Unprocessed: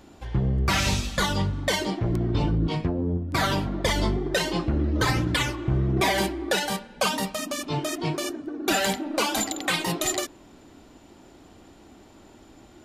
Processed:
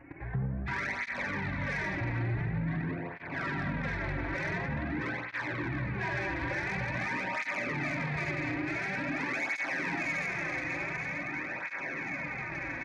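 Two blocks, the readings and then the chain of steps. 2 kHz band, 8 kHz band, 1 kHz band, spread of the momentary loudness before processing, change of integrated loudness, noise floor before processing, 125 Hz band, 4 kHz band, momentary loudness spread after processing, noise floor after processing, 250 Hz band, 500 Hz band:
−0.5 dB, −23.0 dB, −8.5 dB, 6 LU, −7.5 dB, −51 dBFS, −8.0 dB, −19.5 dB, 4 LU, −40 dBFS, −8.5 dB, −11.0 dB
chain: hearing-aid frequency compression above 1,500 Hz 4 to 1
comb filter 7.3 ms, depth 35%
on a send: feedback delay with all-pass diffusion 1,012 ms, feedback 70%, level −13 dB
on the sum: output level in coarse steps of 16 dB
four-comb reverb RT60 3.3 s, combs from 33 ms, DRR −1 dB
in parallel at 0 dB: brickwall limiter −24 dBFS, peak gain reduction 8 dB
on the sum: downward compressor 5 to 1, threshold −32 dBFS, peak gain reduction 11.5 dB
dynamic equaliser 400 Hz, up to −6 dB, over −51 dBFS, Q 1.2
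soft clipping −31.5 dBFS, distortion −16 dB
through-zero flanger with one copy inverted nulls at 0.47 Hz, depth 5.1 ms
level +7 dB

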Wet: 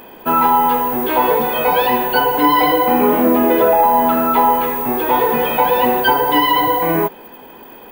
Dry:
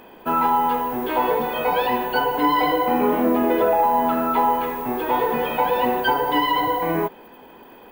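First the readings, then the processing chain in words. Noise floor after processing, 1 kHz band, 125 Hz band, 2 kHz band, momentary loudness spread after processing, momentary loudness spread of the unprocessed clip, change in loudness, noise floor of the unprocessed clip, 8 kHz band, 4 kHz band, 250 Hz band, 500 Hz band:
−39 dBFS, +5.5 dB, +5.5 dB, +6.0 dB, 4 LU, 5 LU, +6.5 dB, −46 dBFS, can't be measured, +7.0 dB, +5.5 dB, +5.5 dB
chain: high-shelf EQ 7,000 Hz +8.5 dB
level +5.5 dB

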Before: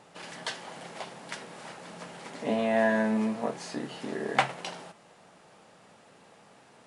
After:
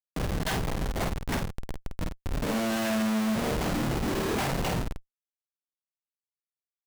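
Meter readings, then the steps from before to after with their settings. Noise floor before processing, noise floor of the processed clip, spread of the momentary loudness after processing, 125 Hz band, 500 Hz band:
−57 dBFS, below −85 dBFS, 11 LU, +12.5 dB, −1.0 dB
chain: high-pass filter 61 Hz 12 dB per octave
parametric band 160 Hz +2.5 dB 2.9 octaves
four-comb reverb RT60 2.1 s, combs from 26 ms, DRR 18.5 dB
bit reduction 11 bits
gain on a spectral selection 0:01.48–0:02.61, 690–2,400 Hz −25 dB
comparator with hysteresis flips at −36 dBFS
double-tracking delay 50 ms −5 dB
level +3 dB

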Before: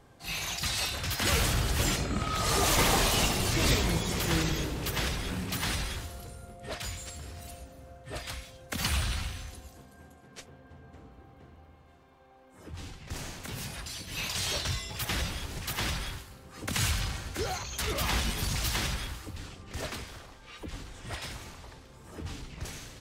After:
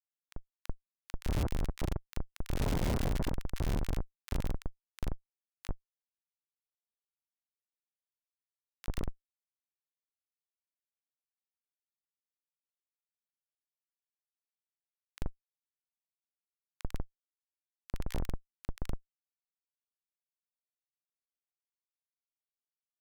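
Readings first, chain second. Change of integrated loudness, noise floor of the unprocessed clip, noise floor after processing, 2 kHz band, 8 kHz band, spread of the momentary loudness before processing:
−8.5 dB, −55 dBFS, below −85 dBFS, −19.0 dB, −22.0 dB, 19 LU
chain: one-pitch LPC vocoder at 8 kHz 130 Hz
comparator with hysteresis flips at −21 dBFS
multiband delay without the direct sound highs, lows 40 ms, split 1,400 Hz
level +4.5 dB

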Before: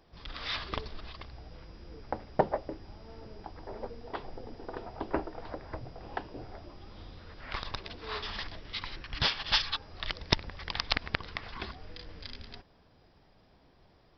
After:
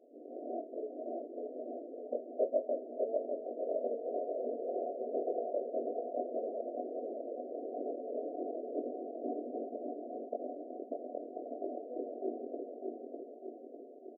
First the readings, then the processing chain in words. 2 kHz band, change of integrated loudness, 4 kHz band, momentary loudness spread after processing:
below −40 dB, −4.0 dB, below −40 dB, 8 LU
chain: lower of the sound and its delayed copy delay 1.7 ms
decimation without filtering 10×
low-pass that shuts in the quiet parts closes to 350 Hz, open at −28.5 dBFS
reversed playback
downward compressor 6 to 1, threshold −45 dBFS, peak gain reduction 24 dB
reversed playback
multi-voice chorus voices 6, 0.3 Hz, delay 22 ms, depth 1.8 ms
brick-wall band-pass 230–740 Hz
on a send: repeating echo 601 ms, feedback 56%, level −3.5 dB
on the sum: level +18 dB

